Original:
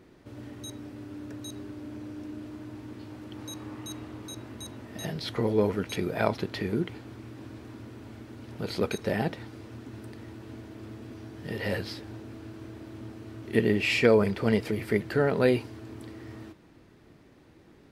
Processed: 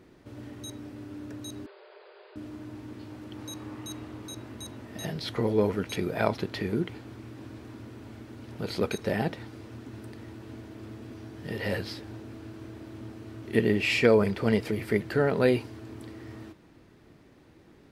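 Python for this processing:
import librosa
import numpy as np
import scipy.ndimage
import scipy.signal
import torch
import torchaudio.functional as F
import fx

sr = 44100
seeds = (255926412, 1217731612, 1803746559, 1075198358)

y = fx.brickwall_bandpass(x, sr, low_hz=370.0, high_hz=5000.0, at=(1.66, 2.36))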